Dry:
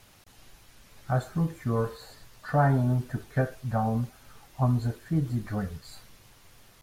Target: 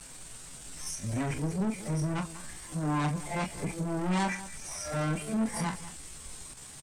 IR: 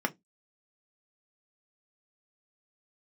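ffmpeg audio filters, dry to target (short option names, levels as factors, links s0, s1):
-filter_complex "[0:a]areverse,asplit=2[s0][s1];[s1]alimiter=limit=0.0668:level=0:latency=1:release=133,volume=1.12[s2];[s0][s2]amix=inputs=2:normalize=0,asoftclip=type=tanh:threshold=0.0473,lowpass=f=6400:t=q:w=6.9,asplit=2[s3][s4];[s4]adelay=36,volume=0.447[s5];[s3][s5]amix=inputs=2:normalize=0,aecho=1:1:197:0.168,asetrate=58866,aresample=44100,atempo=0.749154,volume=0.841"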